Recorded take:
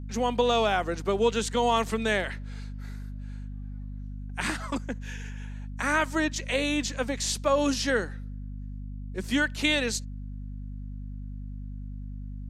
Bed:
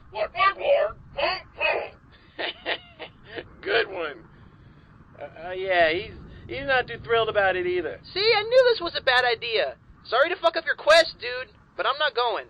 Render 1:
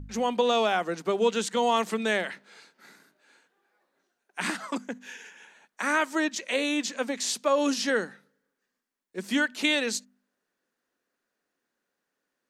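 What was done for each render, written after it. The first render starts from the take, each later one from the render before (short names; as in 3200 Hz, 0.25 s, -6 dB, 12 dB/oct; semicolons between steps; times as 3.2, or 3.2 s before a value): de-hum 50 Hz, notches 5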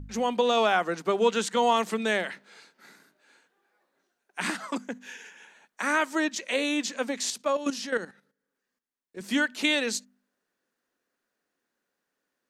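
0.57–1.73 dynamic EQ 1300 Hz, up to +4 dB, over -39 dBFS, Q 0.9; 7.3–9.21 level quantiser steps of 12 dB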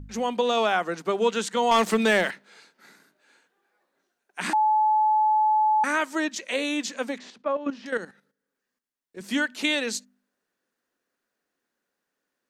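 1.71–2.31 sample leveller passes 2; 4.53–5.84 bleep 860 Hz -17.5 dBFS; 7.18–7.86 LPF 1900 Hz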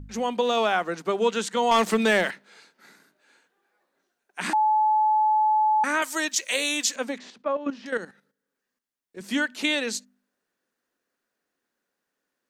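0.42–0.88 backlash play -49.5 dBFS; 6.02–6.96 RIAA curve recording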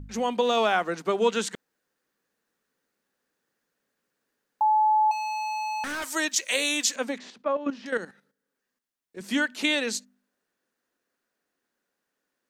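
1.55–4.61 room tone; 5.11–6.05 hard clip -29.5 dBFS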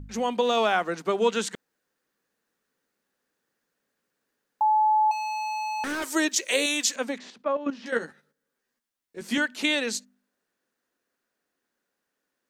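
5.79–6.66 bell 380 Hz +11.5 dB; 7.8–9.38 doubler 13 ms -4 dB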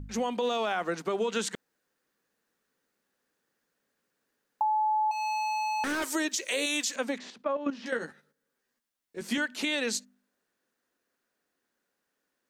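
limiter -18 dBFS, peak gain reduction 8 dB; compressor, threshold -25 dBFS, peak gain reduction 5 dB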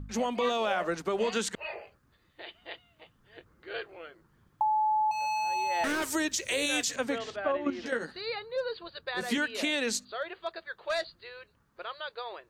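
add bed -15.5 dB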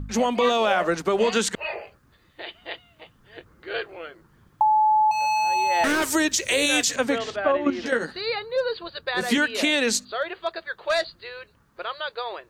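gain +8 dB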